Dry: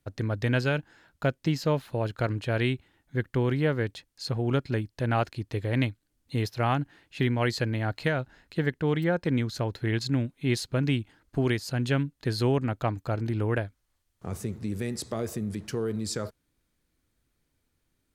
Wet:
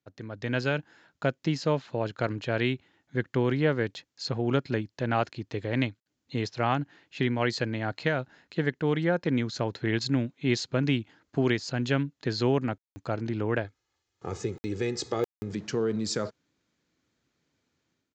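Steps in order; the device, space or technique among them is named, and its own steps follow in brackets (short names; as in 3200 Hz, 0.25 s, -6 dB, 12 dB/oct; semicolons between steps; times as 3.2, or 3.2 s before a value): call with lost packets (HPF 140 Hz 12 dB/oct; downsampling 16000 Hz; AGC gain up to 12 dB; packet loss packets of 60 ms bursts); 13.64–15.52 comb 2.4 ms, depth 62%; gain -9 dB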